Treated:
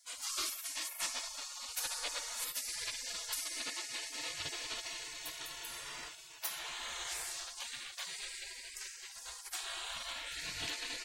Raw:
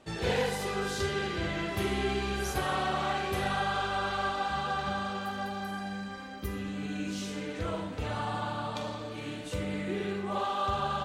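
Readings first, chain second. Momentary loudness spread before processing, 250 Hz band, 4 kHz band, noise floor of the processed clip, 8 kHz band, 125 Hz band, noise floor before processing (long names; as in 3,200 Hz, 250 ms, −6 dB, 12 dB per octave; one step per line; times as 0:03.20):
7 LU, −25.5 dB, −0.5 dB, −51 dBFS, +7.5 dB, −27.0 dB, −40 dBFS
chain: steady tone 1,300 Hz −60 dBFS
gate on every frequency bin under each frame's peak −30 dB weak
level +11.5 dB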